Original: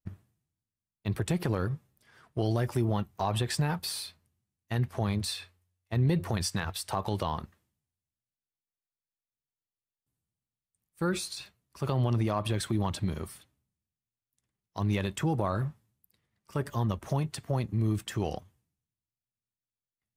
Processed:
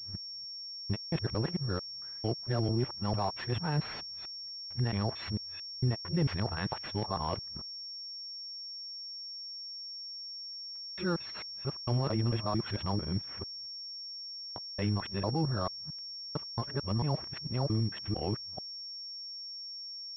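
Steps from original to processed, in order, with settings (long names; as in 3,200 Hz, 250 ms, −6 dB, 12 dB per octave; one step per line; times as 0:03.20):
reversed piece by piece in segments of 224 ms
switching amplifier with a slow clock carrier 5,500 Hz
level −2.5 dB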